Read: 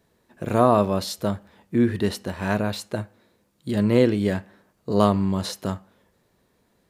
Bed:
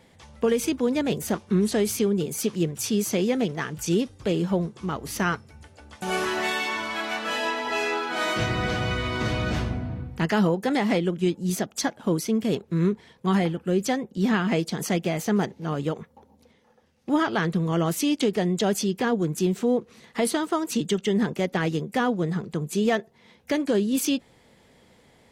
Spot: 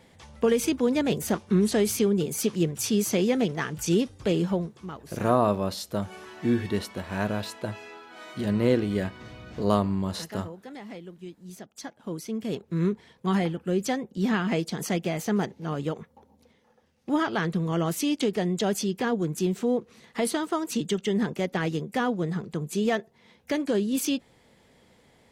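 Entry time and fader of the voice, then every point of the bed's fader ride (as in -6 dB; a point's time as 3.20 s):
4.70 s, -4.5 dB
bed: 4.41 s 0 dB
5.40 s -18 dB
11.42 s -18 dB
12.82 s -2.5 dB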